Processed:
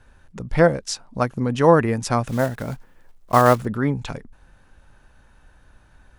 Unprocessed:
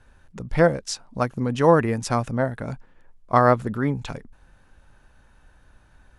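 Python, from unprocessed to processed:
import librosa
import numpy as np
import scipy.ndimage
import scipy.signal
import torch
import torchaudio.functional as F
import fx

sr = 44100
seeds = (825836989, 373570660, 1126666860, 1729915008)

y = fx.block_float(x, sr, bits=5, at=(2.27, 3.64), fade=0.02)
y = y * librosa.db_to_amplitude(2.0)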